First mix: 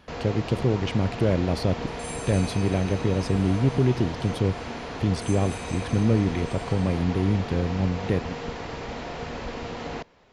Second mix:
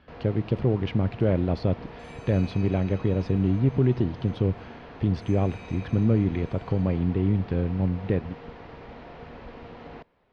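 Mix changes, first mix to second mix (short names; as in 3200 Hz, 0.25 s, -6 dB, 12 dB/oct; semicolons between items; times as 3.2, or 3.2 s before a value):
first sound -8.0 dB; master: add air absorption 260 m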